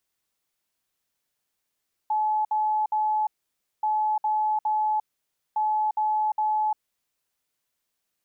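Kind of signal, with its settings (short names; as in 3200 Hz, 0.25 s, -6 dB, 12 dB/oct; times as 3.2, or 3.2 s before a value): beep pattern sine 857 Hz, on 0.35 s, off 0.06 s, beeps 3, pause 0.56 s, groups 3, -21 dBFS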